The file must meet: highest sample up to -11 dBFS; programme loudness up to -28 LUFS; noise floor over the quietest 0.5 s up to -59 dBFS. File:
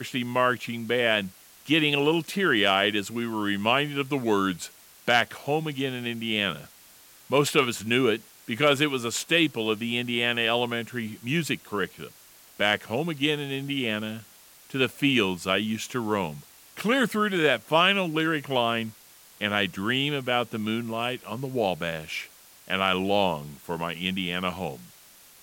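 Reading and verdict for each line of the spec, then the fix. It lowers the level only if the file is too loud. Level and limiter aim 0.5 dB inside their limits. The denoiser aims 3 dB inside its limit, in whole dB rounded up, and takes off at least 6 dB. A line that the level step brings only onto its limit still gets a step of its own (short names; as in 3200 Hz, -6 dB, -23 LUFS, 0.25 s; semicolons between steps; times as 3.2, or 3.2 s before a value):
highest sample -7.5 dBFS: fail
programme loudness -25.5 LUFS: fail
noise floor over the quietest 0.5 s -53 dBFS: fail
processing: denoiser 6 dB, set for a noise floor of -53 dBFS; gain -3 dB; limiter -11.5 dBFS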